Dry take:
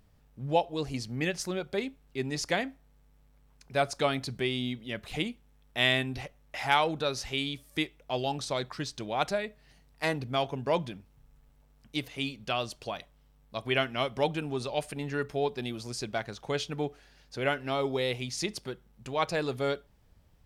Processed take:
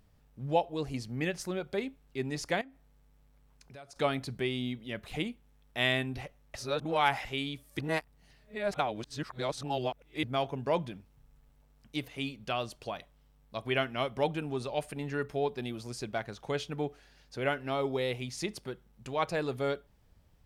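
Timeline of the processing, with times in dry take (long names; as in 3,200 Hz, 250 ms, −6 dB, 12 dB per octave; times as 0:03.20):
0:02.61–0:03.96: downward compressor 4 to 1, threshold −48 dBFS
0:06.55–0:07.25: reverse
0:07.79–0:10.23: reverse
whole clip: dynamic equaliser 5,200 Hz, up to −5 dB, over −49 dBFS, Q 0.74; level −1.5 dB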